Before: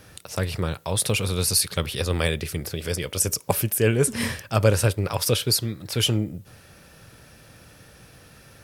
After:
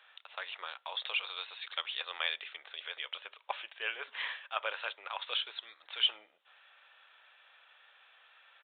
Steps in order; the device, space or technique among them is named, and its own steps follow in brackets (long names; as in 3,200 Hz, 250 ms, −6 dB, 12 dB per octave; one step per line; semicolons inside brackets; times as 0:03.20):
musical greeting card (downsampling to 8,000 Hz; high-pass filter 820 Hz 24 dB per octave; parametric band 3,400 Hz +4.5 dB 0.57 octaves)
level −7 dB